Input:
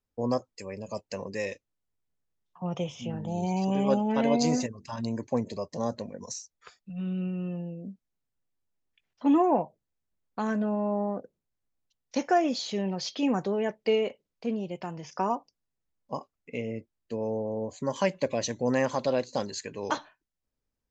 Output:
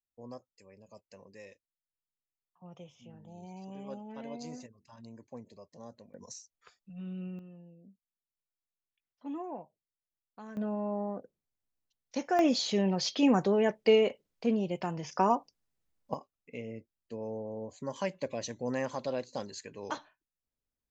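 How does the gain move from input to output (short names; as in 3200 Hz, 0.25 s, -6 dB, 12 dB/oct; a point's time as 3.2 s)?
-18 dB
from 6.14 s -8.5 dB
from 7.39 s -17 dB
from 10.57 s -5.5 dB
from 12.39 s +2 dB
from 16.14 s -7.5 dB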